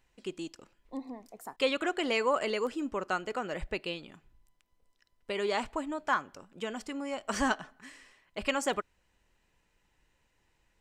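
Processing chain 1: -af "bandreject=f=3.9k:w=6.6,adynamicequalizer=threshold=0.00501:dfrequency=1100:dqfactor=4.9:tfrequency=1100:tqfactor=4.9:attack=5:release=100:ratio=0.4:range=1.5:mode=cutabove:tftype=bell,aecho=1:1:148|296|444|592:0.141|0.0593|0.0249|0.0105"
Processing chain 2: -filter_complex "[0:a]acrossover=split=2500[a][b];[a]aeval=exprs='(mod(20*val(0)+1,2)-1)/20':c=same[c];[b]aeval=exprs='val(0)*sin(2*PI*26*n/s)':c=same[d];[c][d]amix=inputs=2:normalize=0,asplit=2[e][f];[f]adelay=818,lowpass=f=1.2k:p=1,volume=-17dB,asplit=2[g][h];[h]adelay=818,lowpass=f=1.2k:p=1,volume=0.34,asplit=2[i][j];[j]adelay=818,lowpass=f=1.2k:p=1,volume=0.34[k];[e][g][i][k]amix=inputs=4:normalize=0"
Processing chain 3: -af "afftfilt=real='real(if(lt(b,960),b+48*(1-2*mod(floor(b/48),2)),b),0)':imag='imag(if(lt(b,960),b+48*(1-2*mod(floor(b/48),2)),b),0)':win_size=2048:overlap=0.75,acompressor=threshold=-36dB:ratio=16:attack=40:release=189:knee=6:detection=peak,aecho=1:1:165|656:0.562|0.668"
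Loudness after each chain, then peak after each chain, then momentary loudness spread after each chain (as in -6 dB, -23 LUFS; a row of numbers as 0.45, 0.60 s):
-33.5, -34.5, -36.5 LUFS; -15.0, -20.5, -18.5 dBFS; 17, 21, 8 LU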